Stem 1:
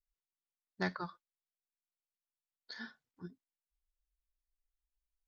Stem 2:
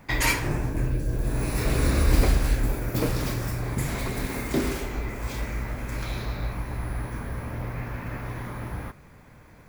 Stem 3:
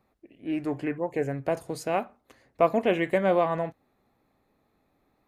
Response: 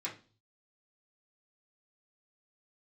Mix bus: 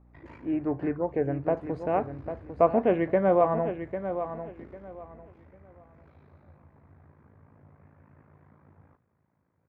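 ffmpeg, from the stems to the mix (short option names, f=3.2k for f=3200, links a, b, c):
-filter_complex "[0:a]volume=-9.5dB[a];[1:a]aeval=exprs='val(0)*sin(2*PI*27*n/s)':c=same,highpass=f=77:w=0.5412,highpass=f=77:w=1.3066,adelay=50,volume=-19.5dB,asplit=2[b][c];[c]volume=-22dB[d];[2:a]aeval=exprs='val(0)+0.00141*(sin(2*PI*60*n/s)+sin(2*PI*2*60*n/s)/2+sin(2*PI*3*60*n/s)/3+sin(2*PI*4*60*n/s)/4+sin(2*PI*5*60*n/s)/5)':c=same,volume=1dB,asplit=2[e][f];[f]volume=-9.5dB[g];[d][g]amix=inputs=2:normalize=0,aecho=0:1:798|1596|2394|3192:1|0.24|0.0576|0.0138[h];[a][b][e][h]amix=inputs=4:normalize=0,lowpass=1.3k"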